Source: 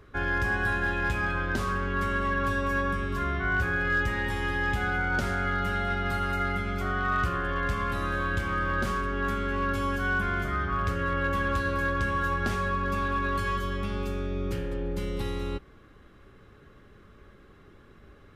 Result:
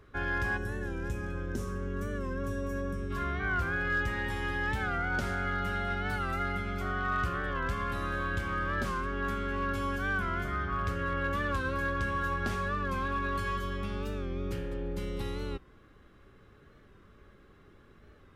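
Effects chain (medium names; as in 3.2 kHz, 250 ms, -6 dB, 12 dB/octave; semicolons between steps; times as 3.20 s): time-frequency box 0.57–3.10 s, 560–5200 Hz -11 dB; warped record 45 rpm, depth 100 cents; trim -4 dB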